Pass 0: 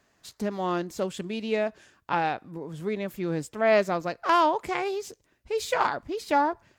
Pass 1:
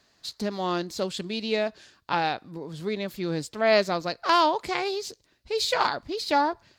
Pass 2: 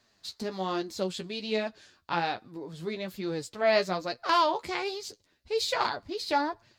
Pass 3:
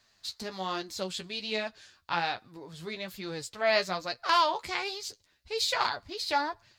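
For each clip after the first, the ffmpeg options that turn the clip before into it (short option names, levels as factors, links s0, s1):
-af "equalizer=f=4300:t=o:w=0.69:g=13"
-af "flanger=delay=8.1:depth=4.8:regen=29:speed=1.2:shape=triangular"
-af "equalizer=f=300:w=0.52:g=-9.5,volume=1.33"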